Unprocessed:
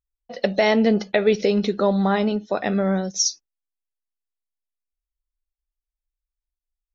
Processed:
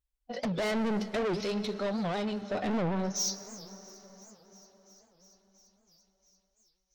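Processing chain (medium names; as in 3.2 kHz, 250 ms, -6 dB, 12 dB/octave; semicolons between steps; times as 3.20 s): dynamic bell 1.3 kHz, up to -4 dB, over -34 dBFS, Q 0.72; harmonic-percussive split percussive -6 dB; 1.40–2.42 s: peaking EQ 290 Hz -12.5 dB 2.6 oct; peak limiter -15 dBFS, peak gain reduction 7 dB; comb of notches 170 Hz; saturation -31.5 dBFS, distortion -5 dB; feedback echo behind a high-pass 341 ms, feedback 80%, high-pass 4.6 kHz, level -20 dB; reverberation RT60 5.5 s, pre-delay 98 ms, DRR 13 dB; warped record 78 rpm, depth 250 cents; trim +3.5 dB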